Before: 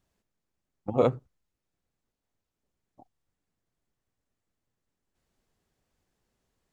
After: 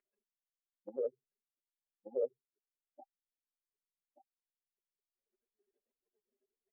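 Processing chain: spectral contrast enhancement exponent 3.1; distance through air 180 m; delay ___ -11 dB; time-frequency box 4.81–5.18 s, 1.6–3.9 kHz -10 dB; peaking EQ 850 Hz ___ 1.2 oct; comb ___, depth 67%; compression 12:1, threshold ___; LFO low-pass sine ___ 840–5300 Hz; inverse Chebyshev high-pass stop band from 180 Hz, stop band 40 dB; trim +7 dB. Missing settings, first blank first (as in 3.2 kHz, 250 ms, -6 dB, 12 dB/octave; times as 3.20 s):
1181 ms, -9 dB, 4.9 ms, -38 dBFS, 0.36 Hz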